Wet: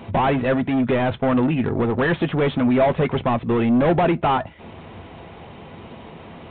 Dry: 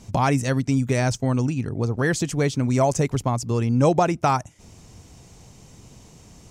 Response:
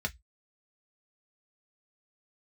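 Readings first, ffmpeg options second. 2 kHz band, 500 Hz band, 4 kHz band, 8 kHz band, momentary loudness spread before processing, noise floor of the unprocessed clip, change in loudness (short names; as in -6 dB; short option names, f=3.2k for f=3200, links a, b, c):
+3.0 dB, +3.5 dB, +1.5 dB, under -40 dB, 6 LU, -49 dBFS, +2.5 dB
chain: -filter_complex "[0:a]asplit=2[a][b];[b]highpass=f=720:p=1,volume=30dB,asoftclip=type=tanh:threshold=-5.5dB[c];[a][c]amix=inputs=2:normalize=0,lowpass=f=1.2k:p=1,volume=-6dB,asplit=2[d][e];[1:a]atrim=start_sample=2205,adelay=6[f];[e][f]afir=irnorm=-1:irlink=0,volume=-14.5dB[g];[d][g]amix=inputs=2:normalize=0,volume=-4.5dB" -ar 8000 -c:a adpcm_g726 -b:a 40k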